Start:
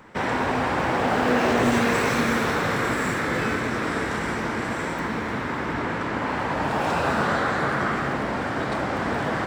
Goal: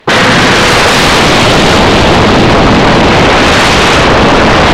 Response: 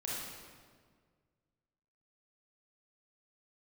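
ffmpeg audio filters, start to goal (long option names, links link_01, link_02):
-af "afwtdn=0.0355,asubboost=boost=11.5:cutoff=140,asetrate=88200,aresample=44100,aeval=exprs='0.335*sin(PI/2*4.47*val(0)/0.335)':channel_layout=same,aemphasis=mode=reproduction:type=cd,volume=8dB"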